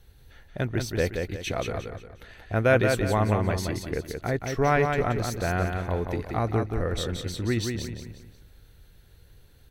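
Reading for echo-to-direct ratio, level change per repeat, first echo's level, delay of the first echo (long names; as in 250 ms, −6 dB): −4.5 dB, −9.0 dB, −5.0 dB, 178 ms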